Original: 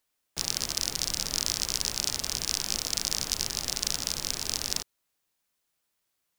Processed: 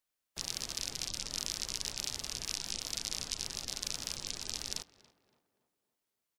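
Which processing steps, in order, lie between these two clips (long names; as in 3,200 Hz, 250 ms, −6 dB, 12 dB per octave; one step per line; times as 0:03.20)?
gate on every frequency bin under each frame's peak −20 dB strong
pitch-shifted copies added −12 semitones −16 dB, −5 semitones −11 dB
tape delay 281 ms, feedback 52%, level −16 dB, low-pass 1,700 Hz
level −8.5 dB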